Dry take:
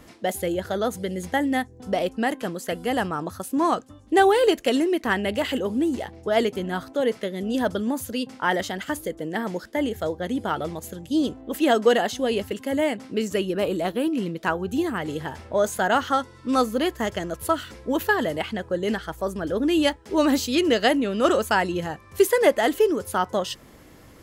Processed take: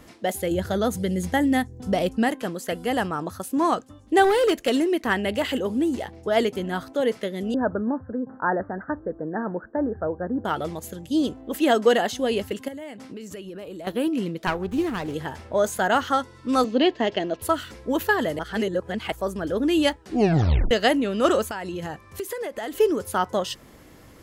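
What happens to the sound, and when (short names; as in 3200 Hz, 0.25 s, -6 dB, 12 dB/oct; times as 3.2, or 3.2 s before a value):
0.51–2.29 tone controls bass +8 dB, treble +3 dB
4.24–4.9 overloaded stage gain 15.5 dB
7.54–10.45 steep low-pass 1700 Hz 96 dB/oct
12.68–13.87 compressor 8:1, threshold -34 dBFS
14.47–15.14 running maximum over 9 samples
16.64–17.42 speaker cabinet 170–5100 Hz, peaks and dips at 270 Hz +7 dB, 390 Hz +5 dB, 700 Hz +6 dB, 1300 Hz -7 dB, 2800 Hz +7 dB, 4000 Hz +4 dB
18.39–19.12 reverse
20.01 tape stop 0.70 s
21.45–22.8 compressor 10:1, threshold -27 dBFS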